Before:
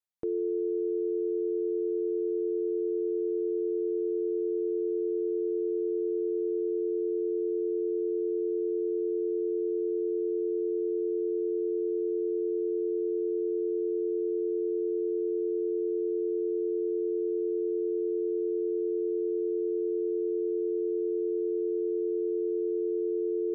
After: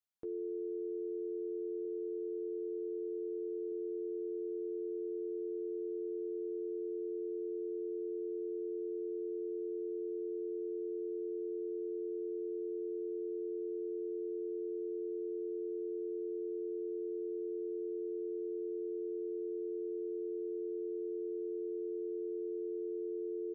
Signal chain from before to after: 1.85–3.72 low shelf 160 Hz -11.5 dB; limiter -31 dBFS, peak gain reduction 7.5 dB; doubler 14 ms -11.5 dB; gain -4 dB

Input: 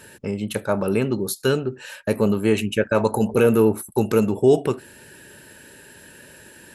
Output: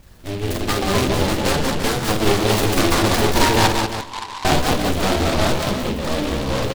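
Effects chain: per-bin expansion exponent 2; in parallel at +2 dB: limiter -18 dBFS, peak gain reduction 10.5 dB; on the sum: flange 1.9 Hz, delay 9.2 ms, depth 1.4 ms, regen +35%; added noise brown -51 dBFS; full-wave rectifier; added harmonics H 5 -15 dB, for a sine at -7 dBFS; echoes that change speed 0.113 s, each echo -3 st, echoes 3; 1.27–1.83 air absorption 160 m; 3.67–4.45 Butterworth band-pass 1000 Hz, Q 6.9; tapped delay 47/178/193/340 ms -5/-8.5/-5.5/-9.5 dB; on a send at -19 dB: reverb RT60 2.9 s, pre-delay 51 ms; on the sum: noise-modulated delay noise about 2600 Hz, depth 0.1 ms; gain +3.5 dB

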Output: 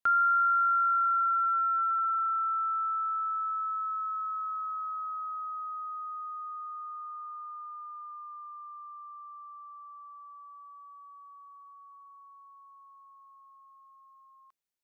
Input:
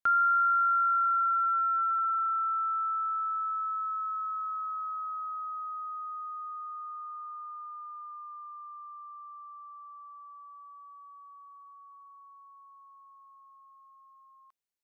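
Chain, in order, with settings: notches 50/100/150/200/250/300 Hz

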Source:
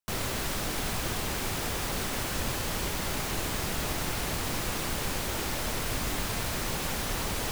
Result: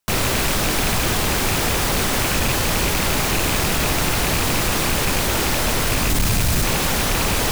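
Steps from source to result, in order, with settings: rattling part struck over -32 dBFS, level -24 dBFS; 6.09–6.64 tone controls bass +9 dB, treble +5 dB; in parallel at -2 dB: negative-ratio compressor -30 dBFS; on the sum: soft clip -19.5 dBFS, distortion -17 dB; gain +8 dB

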